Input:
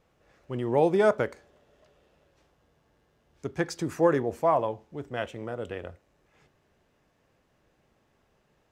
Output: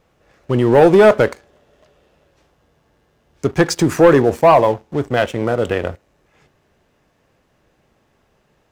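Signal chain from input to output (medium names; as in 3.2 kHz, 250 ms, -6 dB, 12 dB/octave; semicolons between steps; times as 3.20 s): in parallel at -3 dB: compression, threshold -37 dBFS, peak gain reduction 19.5 dB; on the sum: waveshaping leveller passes 2; trim +7 dB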